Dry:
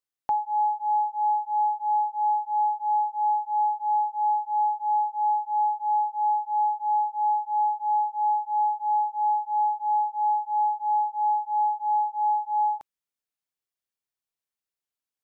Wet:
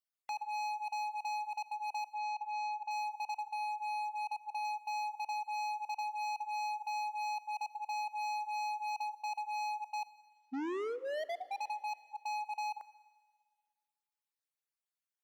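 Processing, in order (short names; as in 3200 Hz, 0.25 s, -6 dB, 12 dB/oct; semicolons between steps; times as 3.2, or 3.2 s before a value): random spectral dropouts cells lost 26%; HPF 630 Hz 12 dB/oct; 3.41–4.65 compressor 2.5:1, threshold -27 dBFS, peak gain reduction 3.5 dB; hard clip -32.5 dBFS, distortion -7 dB; 2.15–2.91 air absorption 99 m; 10.05 tape start 1.57 s; reverb RT60 1.7 s, pre-delay 29 ms, DRR 17.5 dB; gain -3.5 dB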